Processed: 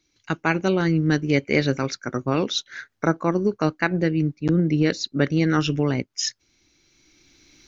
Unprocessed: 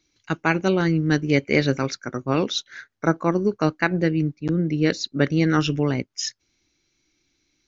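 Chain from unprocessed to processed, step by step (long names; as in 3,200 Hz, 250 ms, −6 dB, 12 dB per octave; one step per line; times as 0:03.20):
camcorder AGC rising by 10 dB per second
level −1 dB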